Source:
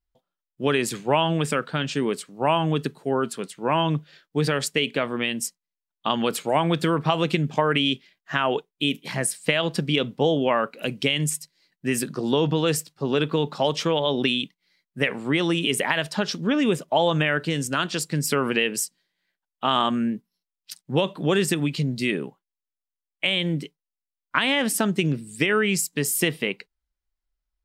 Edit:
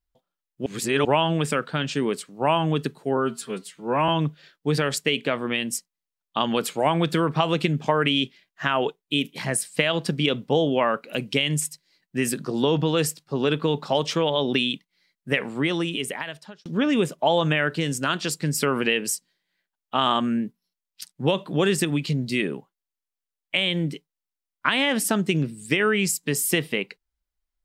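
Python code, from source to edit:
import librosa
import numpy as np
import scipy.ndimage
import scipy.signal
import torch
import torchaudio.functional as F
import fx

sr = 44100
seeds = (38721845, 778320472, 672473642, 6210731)

y = fx.edit(x, sr, fx.reverse_span(start_s=0.66, length_s=0.39),
    fx.stretch_span(start_s=3.17, length_s=0.61, factor=1.5),
    fx.fade_out_span(start_s=15.18, length_s=1.17), tone=tone)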